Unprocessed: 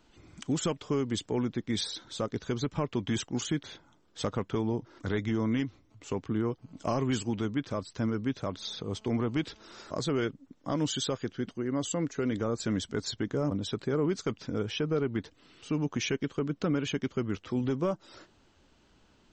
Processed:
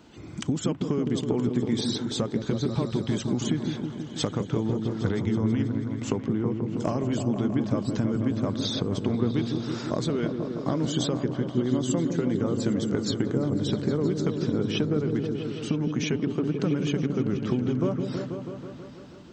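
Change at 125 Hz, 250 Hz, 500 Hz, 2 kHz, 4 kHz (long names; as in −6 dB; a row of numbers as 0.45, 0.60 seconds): +7.0, +6.0, +4.0, 0.0, +2.5 decibels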